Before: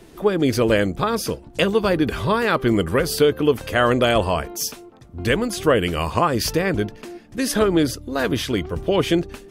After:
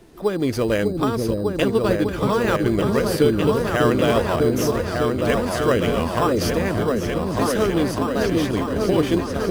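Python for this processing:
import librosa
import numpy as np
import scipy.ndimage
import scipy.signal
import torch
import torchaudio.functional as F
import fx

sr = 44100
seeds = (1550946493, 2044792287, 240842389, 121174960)

p1 = fx.transient(x, sr, attack_db=1, sustain_db=-4, at=(0.99, 2.13))
p2 = fx.echo_opening(p1, sr, ms=599, hz=400, octaves=2, feedback_pct=70, wet_db=0)
p3 = fx.sample_hold(p2, sr, seeds[0], rate_hz=4400.0, jitter_pct=0)
p4 = p2 + (p3 * 10.0 ** (-8.5 / 20.0))
y = p4 * 10.0 ** (-5.5 / 20.0)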